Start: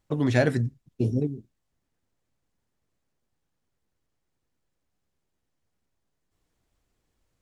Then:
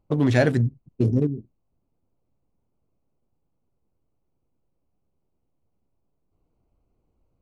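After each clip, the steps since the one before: Wiener smoothing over 25 samples; in parallel at -0.5 dB: limiter -19.5 dBFS, peak gain reduction 11 dB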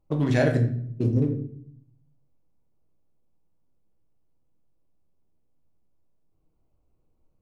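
shoebox room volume 100 m³, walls mixed, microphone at 0.55 m; gain -4.5 dB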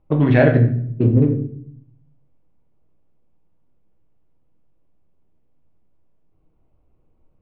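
LPF 3000 Hz 24 dB/oct; gain +8 dB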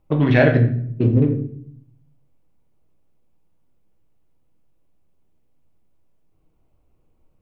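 high shelf 2400 Hz +9.5 dB; gain -1.5 dB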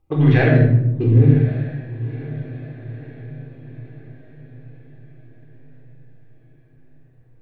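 diffused feedback echo 1.044 s, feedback 50%, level -15.5 dB; shoebox room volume 2600 m³, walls furnished, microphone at 3.8 m; gain -4.5 dB

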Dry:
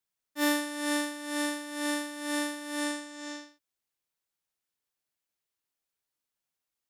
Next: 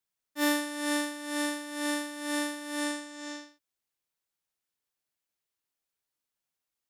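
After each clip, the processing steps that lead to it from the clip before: nothing audible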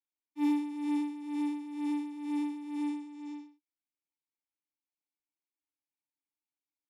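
vowel filter u; high shelf 5300 Hz +12 dB; LFO notch sine 7.8 Hz 560–6900 Hz; gain +2.5 dB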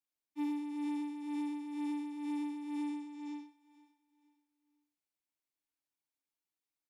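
compressor 6:1, threshold -34 dBFS, peak gain reduction 8.5 dB; feedback echo 0.478 s, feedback 34%, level -19 dB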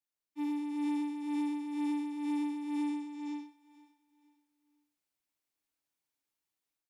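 AGC gain up to 6.5 dB; gain -2.5 dB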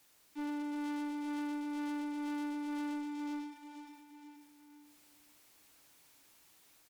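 power-law curve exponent 0.5; one-sided clip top -33.5 dBFS; echo 0.418 s -15 dB; gain -5.5 dB

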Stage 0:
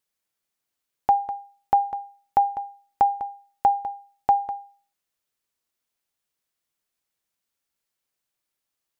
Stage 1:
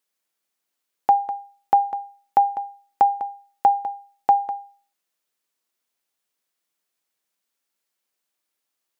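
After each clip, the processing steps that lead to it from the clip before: HPF 200 Hz; gain +2.5 dB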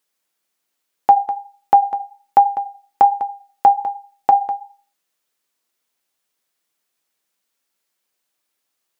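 flange 1.2 Hz, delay 6 ms, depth 6 ms, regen -61%; gain +9 dB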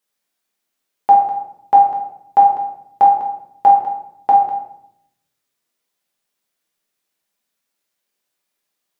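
shoebox room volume 160 m³, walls mixed, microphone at 1.3 m; gain -5 dB

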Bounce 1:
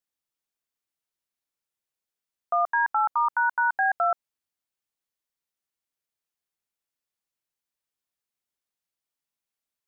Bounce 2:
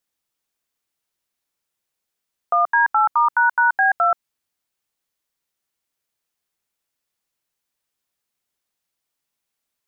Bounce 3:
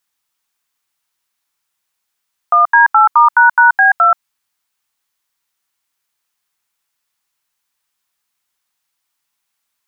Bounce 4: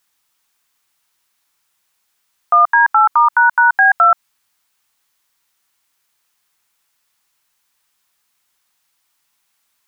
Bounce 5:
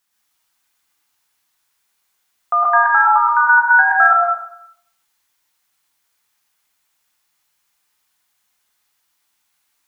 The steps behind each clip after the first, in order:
dynamic EQ 580 Hz, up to -5 dB, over -39 dBFS, Q 1.3; gain +8 dB
resonant low shelf 740 Hz -6.5 dB, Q 1.5; gain +7 dB
maximiser +9.5 dB; gain -3 dB
plate-style reverb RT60 0.71 s, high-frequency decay 0.85×, pre-delay 95 ms, DRR -3 dB; gain -5.5 dB

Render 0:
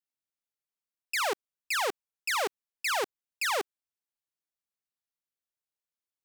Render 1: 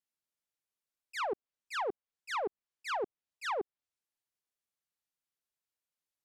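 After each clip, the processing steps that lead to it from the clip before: auto swell 0.129 s; treble ducked by the level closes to 510 Hz, closed at -26.5 dBFS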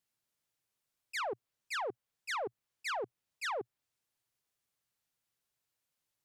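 bell 120 Hz +8.5 dB 0.6 oct; limiter -37 dBFS, peak gain reduction 11 dB; gain +6 dB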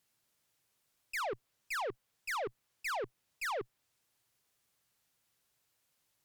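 tube stage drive 43 dB, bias 0.25; gain +8.5 dB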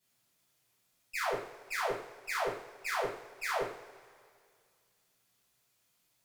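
reverb, pre-delay 3 ms, DRR -10 dB; gain -7 dB

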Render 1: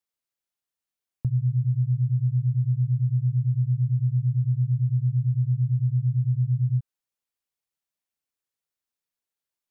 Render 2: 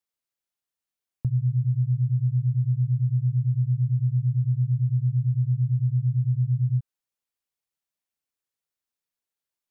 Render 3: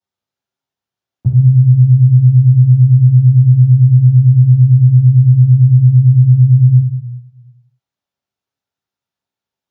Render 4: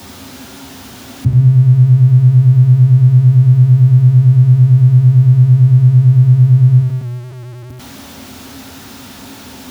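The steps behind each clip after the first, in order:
nothing audible
reverb RT60 1.1 s, pre-delay 3 ms, DRR -12 dB; gain -9 dB
zero-crossing step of -25 dBFS; bell 75 Hz +11.5 dB 0.62 oct; small resonant body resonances 250 Hz, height 18 dB, ringing for 85 ms; gain -3.5 dB

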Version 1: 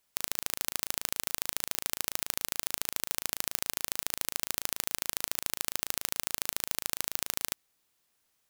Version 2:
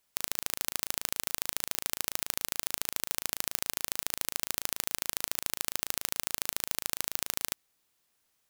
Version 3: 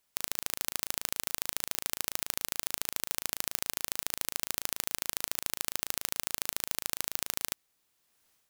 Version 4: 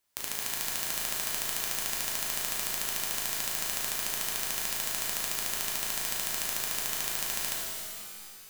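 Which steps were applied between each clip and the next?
nothing audible
AGC gain up to 7 dB; gain -1 dB
shimmer reverb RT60 2.2 s, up +12 st, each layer -2 dB, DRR -4 dB; gain -3 dB

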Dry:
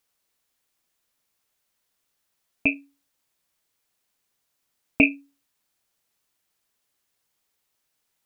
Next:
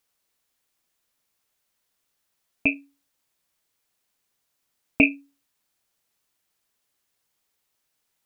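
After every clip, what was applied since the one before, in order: nothing audible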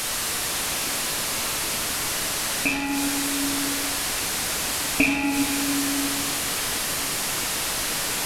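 delta modulation 64 kbps, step -17.5 dBFS; shoebox room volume 160 m³, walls hard, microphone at 0.42 m; gain -3 dB

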